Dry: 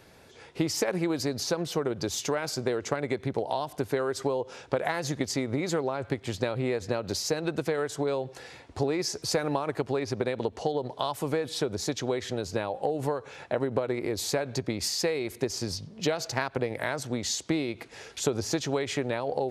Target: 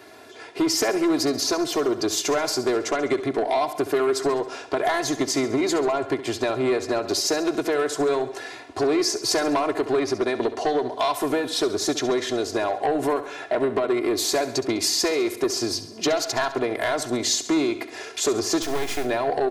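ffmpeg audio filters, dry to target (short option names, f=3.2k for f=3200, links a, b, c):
-filter_complex "[0:a]highpass=170,equalizer=f=810:w=0.48:g=3.5,aecho=1:1:2.9:0.82,acrossover=split=4000[a][b];[a]asoftclip=type=tanh:threshold=-21.5dB[c];[c][b]amix=inputs=2:normalize=0,asettb=1/sr,asplit=3[d][e][f];[d]atrim=end=18.624[g];[e]atrim=start=18.62:end=19.05,asetpts=PTS-STARTPTS,afade=t=in:d=0.004:c=qsin,afade=t=out:st=0.426:d=0.004:c=qsin,acrusher=bits=4:dc=4:mix=0:aa=0.000001[h];[f]atrim=start=19.046[i];[g][h]acrossfade=d=0.004:c1=hsin:c2=qsin[j];[j][i]acrossfade=d=0.004:c1=qsin:c2=hsin,asplit=2[k][l];[l]aecho=0:1:68|136|204|272|340|408:0.211|0.116|0.0639|0.0352|0.0193|0.0106[m];[k][m]amix=inputs=2:normalize=0,volume=5dB"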